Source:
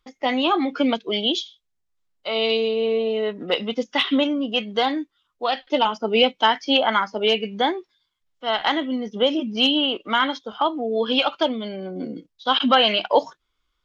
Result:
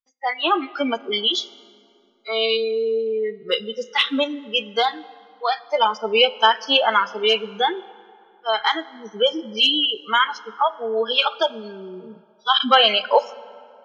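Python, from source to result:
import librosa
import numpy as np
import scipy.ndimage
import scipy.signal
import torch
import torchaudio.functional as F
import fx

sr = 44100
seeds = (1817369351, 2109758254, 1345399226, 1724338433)

y = fx.low_shelf(x, sr, hz=82.0, db=-11.0)
y = fx.noise_reduce_blind(y, sr, reduce_db=29)
y = fx.peak_eq(y, sr, hz=120.0, db=-12.5, octaves=2.1)
y = fx.rev_plate(y, sr, seeds[0], rt60_s=2.5, hf_ratio=0.6, predelay_ms=0, drr_db=18.0)
y = y * librosa.db_to_amplitude(3.5)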